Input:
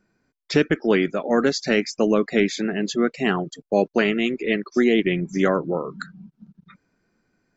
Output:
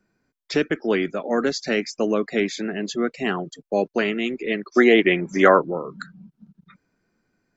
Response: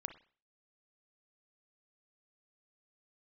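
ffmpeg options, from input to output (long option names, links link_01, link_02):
-filter_complex "[0:a]asettb=1/sr,asplit=3[link_01][link_02][link_03];[link_01]atrim=end=4.754[link_04];[link_02]atrim=start=4.75:end=5.62,asetpts=PTS-STARTPTS,afade=type=in:duration=0.004:curve=qsin,afade=type=out:start_time=0.866:duration=0.004:curve=qsin,equalizer=frequency=1100:width=0.37:gain=12[link_05];[link_03]atrim=start=5.616[link_06];[link_04][link_05]acrossfade=duration=0.004:curve1=hsin:curve2=qsin[link_07];[link_07][link_06]acrossfade=duration=0.004:curve1=qsin:curve2=hsin,acrossover=split=190[link_08][link_09];[link_08]asoftclip=type=tanh:threshold=-37dB[link_10];[link_10][link_09]amix=inputs=2:normalize=0,volume=-2dB"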